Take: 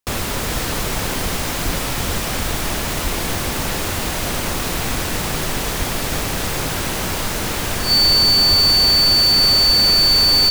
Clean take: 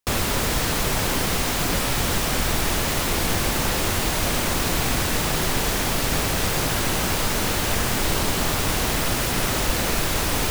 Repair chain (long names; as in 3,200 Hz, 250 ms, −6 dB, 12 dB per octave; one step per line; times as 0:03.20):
notch filter 4,500 Hz, Q 30
high-pass at the plosives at 0:01.22/0:01.64/0:02.36/0:03.03/0:05.78/0:08.49
echo removal 415 ms −8.5 dB